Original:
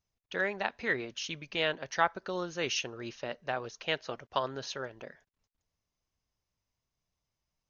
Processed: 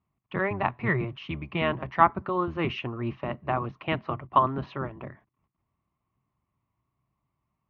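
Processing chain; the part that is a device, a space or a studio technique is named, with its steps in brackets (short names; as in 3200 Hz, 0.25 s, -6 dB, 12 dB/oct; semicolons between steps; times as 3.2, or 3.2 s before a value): sub-octave bass pedal (octaver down 1 oct, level +1 dB; speaker cabinet 75–2300 Hz, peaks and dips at 130 Hz +7 dB, 200 Hz +3 dB, 330 Hz +3 dB, 490 Hz -9 dB, 1100 Hz +10 dB, 1600 Hz -10 dB); gain +6.5 dB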